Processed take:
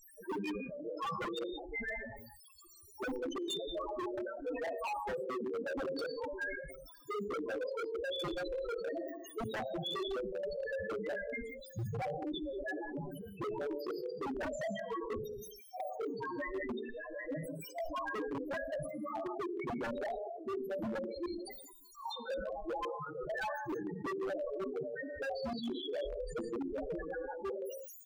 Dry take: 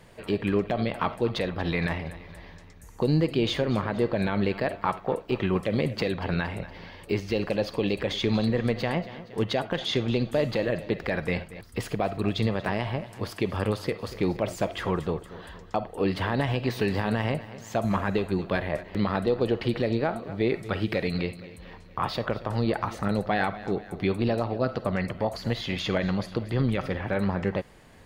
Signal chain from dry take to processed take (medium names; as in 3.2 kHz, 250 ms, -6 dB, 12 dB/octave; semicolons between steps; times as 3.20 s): harmonic-percussive separation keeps percussive; hum notches 50/100/150/200/250 Hz; expander -42 dBFS; bass shelf 99 Hz +2.5 dB; on a send: early reflections 26 ms -5.5 dB, 50 ms -11 dB; on the sum: word length cut 6-bit, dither triangular; loudest bins only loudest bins 1; trance gate "xxxxx.x.x" 151 bpm -12 dB; gated-style reverb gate 210 ms rising, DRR 7 dB; wavefolder -36 dBFS; decay stretcher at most 44 dB/s; trim +3.5 dB